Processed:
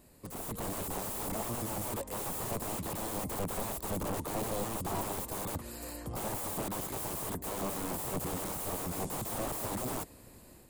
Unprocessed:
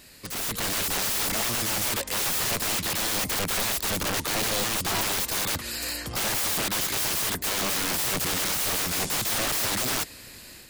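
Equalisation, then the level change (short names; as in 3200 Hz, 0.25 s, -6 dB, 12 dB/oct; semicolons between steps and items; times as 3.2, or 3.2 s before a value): high shelf 2200 Hz -8 dB; band shelf 2900 Hz -10.5 dB 2.4 oct; -3.5 dB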